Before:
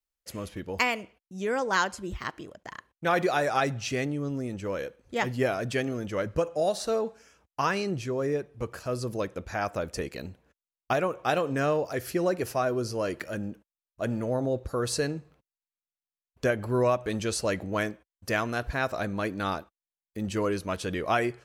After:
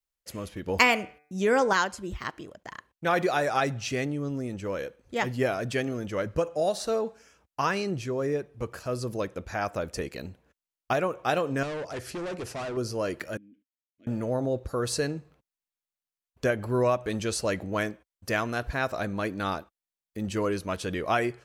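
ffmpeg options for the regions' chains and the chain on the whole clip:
ffmpeg -i in.wav -filter_complex "[0:a]asettb=1/sr,asplit=3[link_01][link_02][link_03];[link_01]atrim=end=0.664[link_04];[link_02]atrim=start=0.66:end=1.73,asetpts=PTS-STARTPTS,afade=type=in:duration=0.004:curve=qsin,afade=type=out:start_time=1.066:duration=0.004:curve=qsin,bandreject=frequency=148.9:width_type=h:width=4,bandreject=frequency=297.8:width_type=h:width=4,bandreject=frequency=446.7:width_type=h:width=4,bandreject=frequency=595.6:width_type=h:width=4,bandreject=frequency=744.5:width_type=h:width=4,bandreject=frequency=893.4:width_type=h:width=4,bandreject=frequency=1042.3:width_type=h:width=4,bandreject=frequency=1191.2:width_type=h:width=4,bandreject=frequency=1340.1:width_type=h:width=4,bandreject=frequency=1489:width_type=h:width=4,bandreject=frequency=1637.9:width_type=h:width=4,bandreject=frequency=1786.8:width_type=h:width=4,bandreject=frequency=1935.7:width_type=h:width=4,bandreject=frequency=2084.6:width_type=h:width=4,bandreject=frequency=2233.5:width_type=h:width=4,bandreject=frequency=2382.4:width_type=h:width=4,bandreject=frequency=2531.3:width_type=h:width=4,acontrast=47[link_05];[link_03]atrim=start=1.726[link_06];[link_04][link_05]acrossfade=duration=0.004:curve1=hsin:curve2=qsin[link_07];[link_07][link_06]acrossfade=duration=0.004:curve1=qsin:curve2=hsin,asettb=1/sr,asplit=3[link_08][link_09][link_10];[link_08]atrim=end=11.634[link_11];[link_09]atrim=start=11.63:end=12.77,asetpts=PTS-STARTPTS,afade=type=in:duration=0.004:curve=qsin,afade=type=out:start_time=1.136:duration=0.004:curve=qsin,asoftclip=type=hard:threshold=-32dB,lowpass=frequency=10000:width=0.5412,lowpass=frequency=10000:width=1.3066[link_12];[link_10]atrim=start=12.766[link_13];[link_11][link_12]acrossfade=duration=0.004:curve1=hsin:curve2=qsin[link_14];[link_14][link_13]acrossfade=duration=0.004:curve1=qsin:curve2=hsin,asettb=1/sr,asplit=3[link_15][link_16][link_17];[link_15]atrim=end=13.374[link_18];[link_16]atrim=start=13.37:end=14.07,asetpts=PTS-STARTPTS,afade=type=in:duration=0.004:curve=qsin,afade=type=out:start_time=0.696:duration=0.004:curve=qsin,acompressor=threshold=-43dB:ratio=2:attack=3.2:release=140:knee=1:detection=peak,asplit=3[link_19][link_20][link_21];[link_19]bandpass=frequency=270:width_type=q:width=8,volume=0dB[link_22];[link_20]bandpass=frequency=2290:width_type=q:width=8,volume=-6dB[link_23];[link_21]bandpass=frequency=3010:width_type=q:width=8,volume=-9dB[link_24];[link_22][link_23][link_24]amix=inputs=3:normalize=0[link_25];[link_17]atrim=start=14.066[link_26];[link_18][link_25]acrossfade=duration=0.004:curve1=hsin:curve2=qsin[link_27];[link_27][link_26]acrossfade=duration=0.004:curve1=qsin:curve2=hsin" out.wav

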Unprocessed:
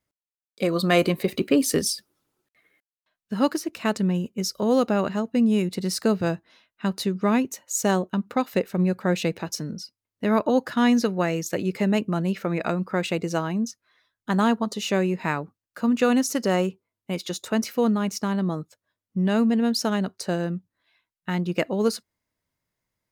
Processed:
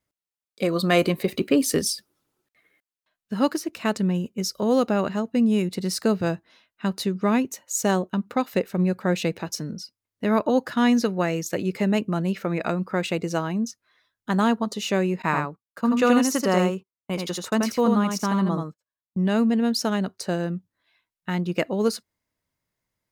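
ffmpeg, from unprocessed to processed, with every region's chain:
ffmpeg -i in.wav -filter_complex "[0:a]asettb=1/sr,asplit=3[link_01][link_02][link_03];[link_01]atrim=end=15.224[link_04];[link_02]atrim=start=15.22:end=19.24,asetpts=PTS-STARTPTS,afade=type=in:duration=0.004:curve=qsin,afade=type=out:start_time=4.016:duration=0.004:curve=qsin,agate=range=-23dB:threshold=-42dB:ratio=16:release=100:detection=peak,equalizer=frequency=1100:width_type=o:width=0.58:gain=5.5,aecho=1:1:82:0.631,atrim=end_sample=177282[link_05];[link_03]atrim=start=19.236[link_06];[link_04][link_05]acrossfade=duration=0.004:curve1=hsin:curve2=qsin[link_07];[link_07][link_06]acrossfade=duration=0.004:curve1=qsin:curve2=hsin" out.wav

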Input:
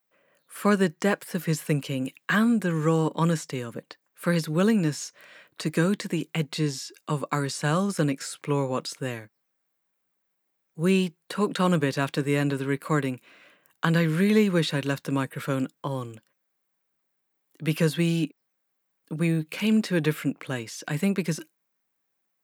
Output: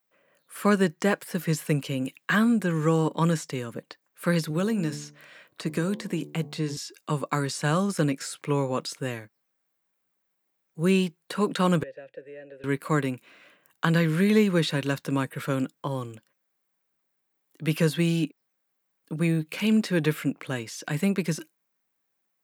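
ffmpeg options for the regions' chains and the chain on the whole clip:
ffmpeg -i in.wav -filter_complex "[0:a]asettb=1/sr,asplit=3[link_01][link_02][link_03];[link_01]atrim=end=4.504[link_04];[link_02]atrim=start=4.5:end=6.77,asetpts=PTS-STARTPTS,afade=type=in:duration=0.004:curve=qsin,afade=type=out:start_time=2.266:duration=0.004:curve=qsin,bandreject=frequency=73.54:width_type=h:width=4,bandreject=frequency=147.08:width_type=h:width=4,bandreject=frequency=220.62:width_type=h:width=4,bandreject=frequency=294.16:width_type=h:width=4,bandreject=frequency=367.7:width_type=h:width=4,bandreject=frequency=441.24:width_type=h:width=4,bandreject=frequency=514.78:width_type=h:width=4,bandreject=frequency=588.32:width_type=h:width=4,bandreject=frequency=661.86:width_type=h:width=4,bandreject=frequency=735.4:width_type=h:width=4,bandreject=frequency=808.94:width_type=h:width=4,bandreject=frequency=882.48:width_type=h:width=4,bandreject=frequency=956.02:width_type=h:width=4,bandreject=frequency=1029.56:width_type=h:width=4,bandreject=frequency=1103.1:width_type=h:width=4,acrossover=split=1500|3600[link_05][link_06][link_07];[link_05]acompressor=threshold=-23dB:ratio=4[link_08];[link_06]acompressor=threshold=-44dB:ratio=4[link_09];[link_07]acompressor=threshold=-43dB:ratio=4[link_10];[link_08][link_09][link_10]amix=inputs=3:normalize=0[link_11];[link_03]atrim=start=6.766[link_12];[link_04][link_11]acrossfade=duration=0.004:curve1=hsin:curve2=qsin[link_13];[link_13][link_12]acrossfade=duration=0.004:curve1=qsin:curve2=hsin,asettb=1/sr,asplit=3[link_14][link_15][link_16];[link_14]atrim=end=11.834[link_17];[link_15]atrim=start=11.83:end=12.64,asetpts=PTS-STARTPTS,afade=type=in:duration=0.004:curve=qsin,afade=type=out:start_time=0.806:duration=0.004:curve=qsin,equalizer=frequency=130:width_type=o:width=0.3:gain=7.5,acrossover=split=350|1600[link_18][link_19][link_20];[link_18]acompressor=threshold=-33dB:ratio=4[link_21];[link_19]acompressor=threshold=-32dB:ratio=4[link_22];[link_20]acompressor=threshold=-48dB:ratio=4[link_23];[link_21][link_22][link_23]amix=inputs=3:normalize=0,asplit=3[link_24][link_25][link_26];[link_24]bandpass=frequency=530:width_type=q:width=8,volume=0dB[link_27];[link_25]bandpass=frequency=1840:width_type=q:width=8,volume=-6dB[link_28];[link_26]bandpass=frequency=2480:width_type=q:width=8,volume=-9dB[link_29];[link_27][link_28][link_29]amix=inputs=3:normalize=0[link_30];[link_16]atrim=start=12.636[link_31];[link_17][link_30]acrossfade=duration=0.004:curve1=hsin:curve2=qsin[link_32];[link_32][link_31]acrossfade=duration=0.004:curve1=qsin:curve2=hsin" out.wav

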